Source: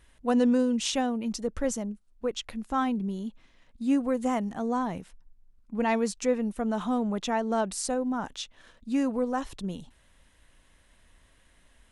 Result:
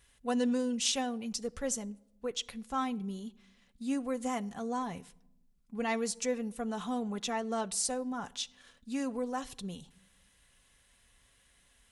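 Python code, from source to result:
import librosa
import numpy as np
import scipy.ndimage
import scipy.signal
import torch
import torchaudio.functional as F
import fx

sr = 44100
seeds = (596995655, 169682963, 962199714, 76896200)

y = fx.high_shelf(x, sr, hz=2300.0, db=10.0)
y = fx.notch_comb(y, sr, f0_hz=310.0)
y = fx.room_shoebox(y, sr, seeds[0], volume_m3=2700.0, walls='furnished', distance_m=0.32)
y = y * librosa.db_to_amplitude(-6.5)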